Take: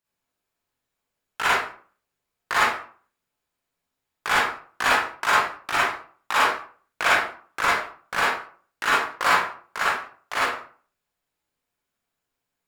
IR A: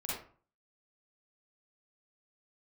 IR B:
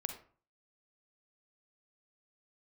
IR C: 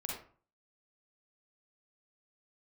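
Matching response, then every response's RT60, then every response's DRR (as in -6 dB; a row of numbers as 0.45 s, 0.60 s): A; 0.45 s, 0.45 s, 0.45 s; -7.5 dB, 6.0 dB, -2.5 dB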